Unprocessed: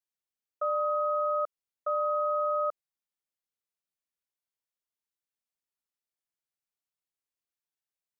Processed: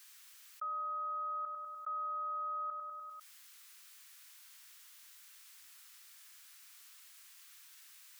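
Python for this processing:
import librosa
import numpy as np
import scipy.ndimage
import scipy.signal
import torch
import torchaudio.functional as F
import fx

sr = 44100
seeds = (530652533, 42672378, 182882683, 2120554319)

y = scipy.signal.sosfilt(scipy.signal.butter(4, 1200.0, 'highpass', fs=sr, output='sos'), x)
y = fx.echo_feedback(y, sr, ms=99, feedback_pct=48, wet_db=-12.5)
y = fx.env_flatten(y, sr, amount_pct=70)
y = F.gain(torch.from_numpy(y), -5.0).numpy()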